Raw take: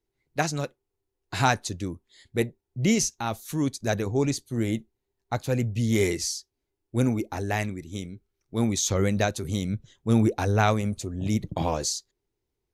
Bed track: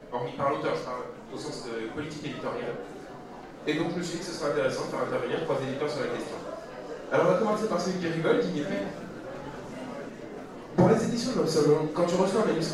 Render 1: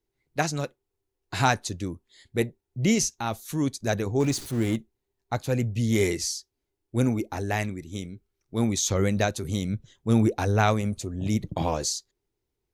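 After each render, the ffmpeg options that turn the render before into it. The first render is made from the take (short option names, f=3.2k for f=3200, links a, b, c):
-filter_complex "[0:a]asettb=1/sr,asplit=3[a][b][c];[a]atrim=end=4.204[d];[b]atrim=start=4.2:end=4.76,asetpts=PTS-STARTPTS,afade=t=in:d=0.004:c=qsin,afade=t=out:st=0.556:d=0.004:c=qsin,aeval=exprs='val(0)+0.5*0.0178*sgn(val(0))':c=same[e];[c]atrim=start=4.756[f];[d][e]acrossfade=d=0.004:c1=hsin:c2=qsin[g];[g][f]acrossfade=d=0.004:c1=qsin:c2=hsin"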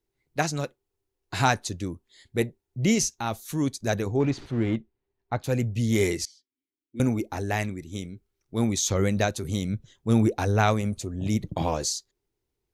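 -filter_complex "[0:a]asettb=1/sr,asplit=3[a][b][c];[a]atrim=end=4.164[d];[b]atrim=start=4.16:end=5.44,asetpts=PTS-STARTPTS,afade=t=in:d=0.004:c=qsin,afade=t=out:st=1.276:d=0.004:c=qsin,lowpass=2.8k[e];[c]atrim=start=5.436[f];[d][e]acrossfade=d=0.004:c1=hsin:c2=qsin[g];[g][f]acrossfade=d=0.004:c1=qsin:c2=hsin,asettb=1/sr,asplit=3[h][i][j];[h]atrim=end=6.254[k];[i]atrim=start=6.25:end=7,asetpts=PTS-STARTPTS,afade=t=in:d=0.004:c=qsin,afade=t=out:st=0.746:d=0.004:c=qsin,asplit=3[l][m][n];[l]bandpass=f=270:t=q:w=8,volume=0dB[o];[m]bandpass=f=2.29k:t=q:w=8,volume=-6dB[p];[n]bandpass=f=3.01k:t=q:w=8,volume=-9dB[q];[o][p][q]amix=inputs=3:normalize=0[r];[j]atrim=start=6.996[s];[k][r]acrossfade=d=0.004:c1=hsin:c2=qsin[t];[t][s]acrossfade=d=0.004:c1=qsin:c2=hsin"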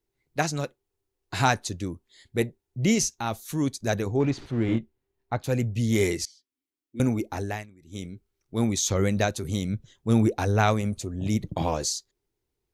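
-filter_complex "[0:a]asettb=1/sr,asplit=3[a][b][c];[a]atrim=end=4.664[d];[b]atrim=start=4.66:end=5.34,asetpts=PTS-STARTPTS,afade=t=in:d=0.004:c=qsin,afade=t=out:st=0.676:d=0.004:c=qsin,asplit=2[e][f];[f]adelay=26,volume=-3.5dB[g];[e][g]amix=inputs=2:normalize=0,atrim=end_sample=29988[h];[c]atrim=start=5.336[i];[d][h]acrossfade=d=0.004:c1=hsin:c2=qsin[j];[j][i]acrossfade=d=0.004:c1=qsin:c2=hsin,asplit=3[k][l][m];[k]atrim=end=7.66,asetpts=PTS-STARTPTS,afade=t=out:st=7.42:d=0.24:silence=0.112202[n];[l]atrim=start=7.66:end=7.8,asetpts=PTS-STARTPTS,volume=-19dB[o];[m]atrim=start=7.8,asetpts=PTS-STARTPTS,afade=t=in:d=0.24:silence=0.112202[p];[n][o][p]concat=n=3:v=0:a=1"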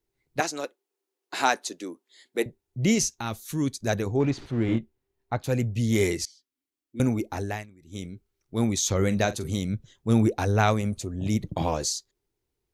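-filter_complex "[0:a]asettb=1/sr,asplit=3[a][b][c];[a]atrim=end=0.404[d];[b]atrim=start=0.4:end=2.46,asetpts=PTS-STARTPTS,afade=t=in:d=0.004:c=qsin,afade=t=out:st=2.056:d=0.004:c=qsin,highpass=f=280:w=0.5412,highpass=f=280:w=1.3066[e];[c]atrim=start=2.456[f];[d][e]acrossfade=d=0.004:c1=hsin:c2=qsin[g];[g][f]acrossfade=d=0.004:c1=qsin:c2=hsin,asettb=1/sr,asplit=3[h][i][j];[h]atrim=end=3.214[k];[i]atrim=start=3.21:end=3.82,asetpts=PTS-STARTPTS,afade=t=in:d=0.004:c=qsin,afade=t=out:st=0.606:d=0.004:c=qsin,equalizer=f=720:w=1.5:g=-6.5[l];[j]atrim=start=3.816[m];[k][l]acrossfade=d=0.004:c1=hsin:c2=qsin[n];[n][m]acrossfade=d=0.004:c1=qsin:c2=hsin,asettb=1/sr,asplit=3[o][p][q];[o]atrim=end=8.974[r];[p]atrim=start=8.97:end=9.58,asetpts=PTS-STARTPTS,afade=t=in:d=0.004:c=qsin,afade=t=out:st=0.606:d=0.004:c=qsin,asplit=2[s][t];[t]adelay=44,volume=-14dB[u];[s][u]amix=inputs=2:normalize=0,atrim=end_sample=26901[v];[q]atrim=start=9.576[w];[r][v]acrossfade=d=0.004:c1=hsin:c2=qsin[x];[x][w]acrossfade=d=0.004:c1=qsin:c2=hsin"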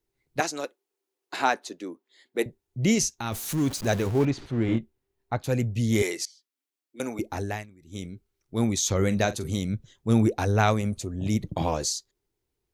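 -filter_complex "[0:a]asettb=1/sr,asplit=3[a][b][c];[a]atrim=end=1.364[d];[b]atrim=start=1.36:end=2.39,asetpts=PTS-STARTPTS,afade=t=in:d=0.004:c=qsin,afade=t=out:st=1.026:d=0.004:c=qsin,equalizer=f=9.2k:t=o:w=2.1:g=-9[e];[c]atrim=start=2.386[f];[d][e]acrossfade=d=0.004:c1=hsin:c2=qsin[g];[g][f]acrossfade=d=0.004:c1=qsin:c2=hsin,asettb=1/sr,asplit=3[h][i][j];[h]atrim=end=3.324[k];[i]atrim=start=3.32:end=4.25,asetpts=PTS-STARTPTS,afade=t=in:d=0.004:c=qsin,afade=t=out:st=0.926:d=0.004:c=qsin,aeval=exprs='val(0)+0.5*0.0251*sgn(val(0))':c=same[l];[j]atrim=start=4.246[m];[k][l]acrossfade=d=0.004:c1=hsin:c2=qsin[n];[n][m]acrossfade=d=0.004:c1=qsin:c2=hsin,asettb=1/sr,asplit=3[o][p][q];[o]atrim=end=6.024[r];[p]atrim=start=6.02:end=7.19,asetpts=PTS-STARTPTS,afade=t=in:d=0.004:c=qsin,afade=t=out:st=1.166:d=0.004:c=qsin,highpass=430[s];[q]atrim=start=7.186[t];[r][s]acrossfade=d=0.004:c1=hsin:c2=qsin[u];[u][t]acrossfade=d=0.004:c1=qsin:c2=hsin"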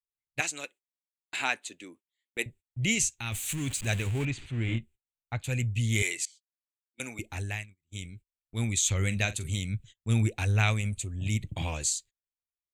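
-af "agate=range=-27dB:threshold=-45dB:ratio=16:detection=peak,firequalizer=gain_entry='entry(110,0);entry(170,-8);entry(400,-13);entry(1200,-9);entry(2500,7);entry(5300,-10);entry(7700,8);entry(11000,-4)':delay=0.05:min_phase=1"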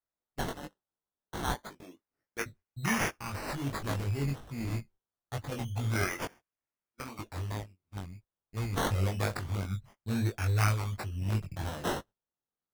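-af "acrusher=samples=15:mix=1:aa=0.000001:lfo=1:lforange=9:lforate=0.27,flanger=delay=19.5:depth=2.8:speed=2.9"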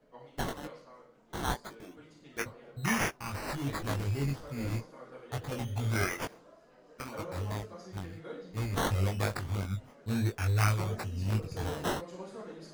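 -filter_complex "[1:a]volume=-19.5dB[a];[0:a][a]amix=inputs=2:normalize=0"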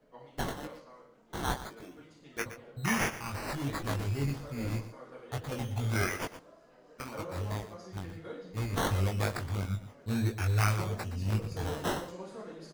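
-af "aecho=1:1:119:0.224"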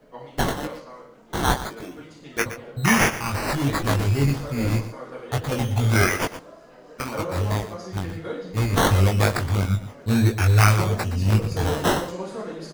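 -af "volume=11.5dB"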